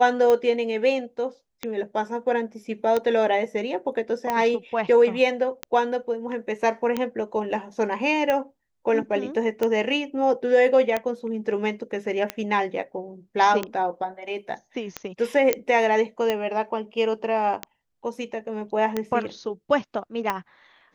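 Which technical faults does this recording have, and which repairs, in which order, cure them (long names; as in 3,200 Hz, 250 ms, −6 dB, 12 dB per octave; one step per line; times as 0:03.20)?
scratch tick 45 rpm −11 dBFS
0:15.53: click −5 dBFS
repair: click removal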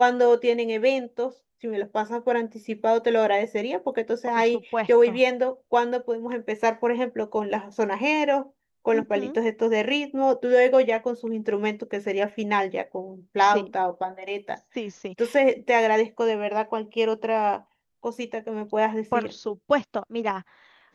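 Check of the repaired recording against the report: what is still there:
none of them is left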